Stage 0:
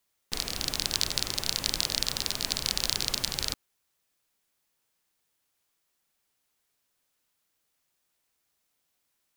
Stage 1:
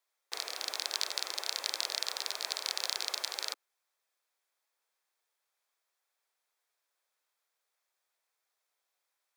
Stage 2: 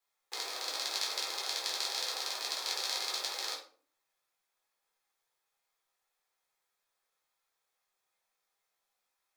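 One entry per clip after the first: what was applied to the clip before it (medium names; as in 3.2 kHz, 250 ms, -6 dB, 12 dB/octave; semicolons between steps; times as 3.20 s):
Bessel high-pass 740 Hz, order 8; tilt EQ -2.5 dB/octave; band-stop 2.9 kHz, Q 9.9
simulated room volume 350 m³, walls furnished, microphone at 4 m; trim -5.5 dB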